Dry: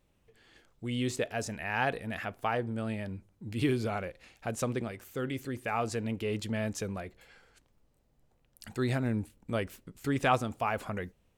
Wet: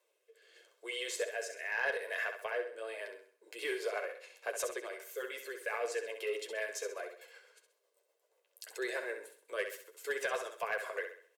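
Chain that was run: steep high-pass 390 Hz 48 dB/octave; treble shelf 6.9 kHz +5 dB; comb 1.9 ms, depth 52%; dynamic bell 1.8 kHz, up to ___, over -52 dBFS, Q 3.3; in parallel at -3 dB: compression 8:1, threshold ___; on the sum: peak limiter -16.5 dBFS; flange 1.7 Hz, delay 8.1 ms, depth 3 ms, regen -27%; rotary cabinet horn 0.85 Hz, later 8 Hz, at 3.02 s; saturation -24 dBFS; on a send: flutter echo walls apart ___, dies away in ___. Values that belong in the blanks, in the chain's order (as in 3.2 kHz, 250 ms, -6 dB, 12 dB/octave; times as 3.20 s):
+8 dB, -39 dBFS, 11.2 m, 0.49 s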